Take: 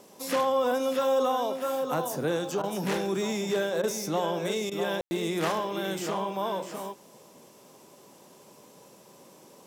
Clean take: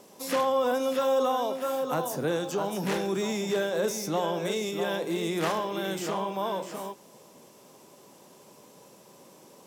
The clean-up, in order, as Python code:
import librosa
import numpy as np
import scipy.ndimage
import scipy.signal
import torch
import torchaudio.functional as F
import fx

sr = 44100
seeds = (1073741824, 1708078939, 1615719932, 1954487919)

y = fx.fix_ambience(x, sr, seeds[0], print_start_s=7.48, print_end_s=7.98, start_s=5.01, end_s=5.11)
y = fx.fix_interpolate(y, sr, at_s=(2.62, 3.82, 4.7), length_ms=13.0)